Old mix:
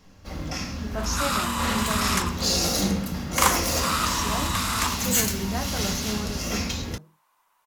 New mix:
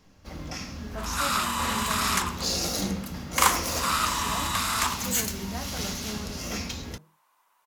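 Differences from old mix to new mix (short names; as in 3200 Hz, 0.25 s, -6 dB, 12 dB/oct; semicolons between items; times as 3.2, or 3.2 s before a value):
speech -6.5 dB; first sound: send -8.0 dB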